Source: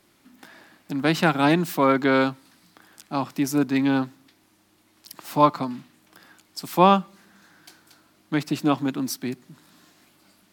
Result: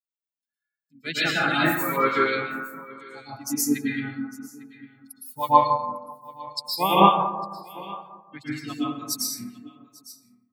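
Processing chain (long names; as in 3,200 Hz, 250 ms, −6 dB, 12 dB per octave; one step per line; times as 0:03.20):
spectral dynamics exaggerated over time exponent 3
dense smooth reverb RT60 1.3 s, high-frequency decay 0.3×, pre-delay 100 ms, DRR −10 dB
pitch-shifted copies added −3 semitones −9 dB
tilt shelving filter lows −9.5 dB, about 1,400 Hz
on a send: single-tap delay 852 ms −20 dB
on the sum: two-band tremolo in antiphase 5.4 Hz, depth 50%, crossover 2,100 Hz
level −1 dB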